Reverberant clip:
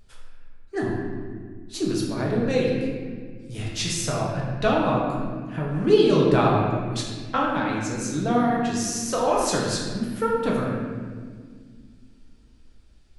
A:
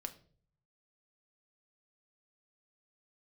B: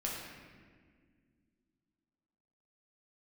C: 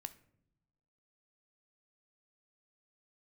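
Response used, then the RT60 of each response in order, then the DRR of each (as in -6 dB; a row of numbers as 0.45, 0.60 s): B; 0.50 s, 1.8 s, not exponential; 6.5, -4.0, 11.0 dB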